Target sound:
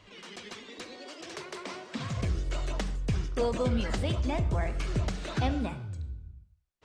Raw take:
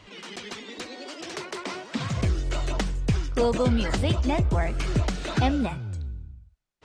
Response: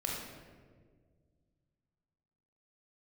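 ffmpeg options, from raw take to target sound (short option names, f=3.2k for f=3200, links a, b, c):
-filter_complex "[0:a]asplit=2[a][b];[1:a]atrim=start_sample=2205,atrim=end_sample=6174,asetrate=37926,aresample=44100[c];[b][c]afir=irnorm=-1:irlink=0,volume=-13dB[d];[a][d]amix=inputs=2:normalize=0,volume=-7.5dB"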